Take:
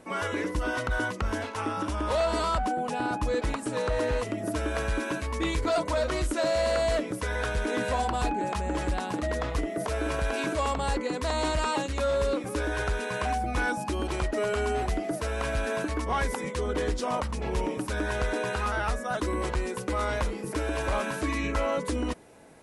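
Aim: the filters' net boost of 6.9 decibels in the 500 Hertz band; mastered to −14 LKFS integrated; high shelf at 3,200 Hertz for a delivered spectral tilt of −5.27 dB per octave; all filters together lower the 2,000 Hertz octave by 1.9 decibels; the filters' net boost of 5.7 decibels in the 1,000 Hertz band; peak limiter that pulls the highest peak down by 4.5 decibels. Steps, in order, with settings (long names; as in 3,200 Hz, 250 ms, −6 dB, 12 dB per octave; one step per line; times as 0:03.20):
parametric band 500 Hz +7 dB
parametric band 1,000 Hz +6.5 dB
parametric band 2,000 Hz −5.5 dB
high-shelf EQ 3,200 Hz −4 dB
level +12 dB
brickwall limiter −4.5 dBFS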